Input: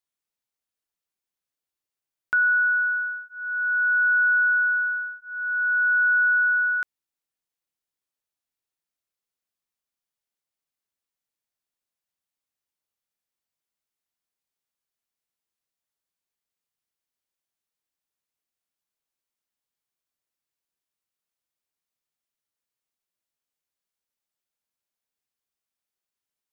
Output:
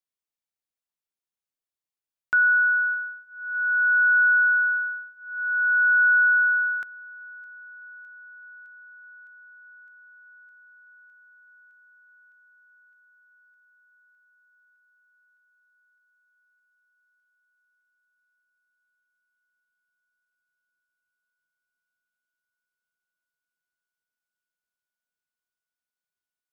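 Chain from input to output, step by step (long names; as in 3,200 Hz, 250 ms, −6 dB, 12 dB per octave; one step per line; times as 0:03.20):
on a send: delay with a high-pass on its return 610 ms, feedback 81%, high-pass 1,600 Hz, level −20 dB
on the sum: expander for the loud parts 1.5 to 1, over −34 dBFS
level +1.5 dB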